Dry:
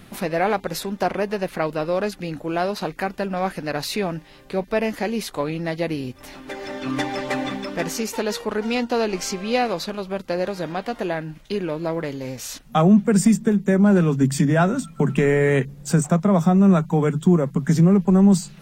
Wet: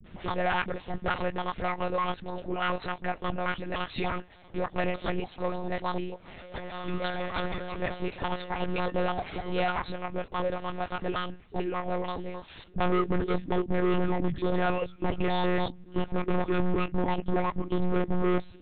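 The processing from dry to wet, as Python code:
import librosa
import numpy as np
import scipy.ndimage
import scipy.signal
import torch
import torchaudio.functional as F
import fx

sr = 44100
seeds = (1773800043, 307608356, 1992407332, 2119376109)

y = fx.pitch_trill(x, sr, semitones=11.5, every_ms=148)
y = fx.dispersion(y, sr, late='highs', ms=57.0, hz=300.0)
y = np.clip(10.0 ** (18.0 / 20.0) * y, -1.0, 1.0) / 10.0 ** (18.0 / 20.0)
y = fx.lpc_monotone(y, sr, seeds[0], pitch_hz=180.0, order=10)
y = y * librosa.db_to_amplitude(-4.5)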